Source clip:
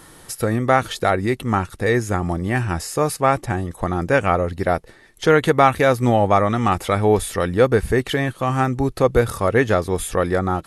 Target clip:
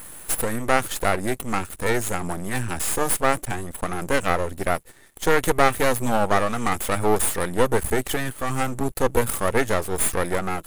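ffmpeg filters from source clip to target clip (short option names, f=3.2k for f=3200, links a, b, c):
-af "aexciter=amount=2.4:drive=9.7:freq=7k,aeval=exprs='max(val(0),0)':c=same"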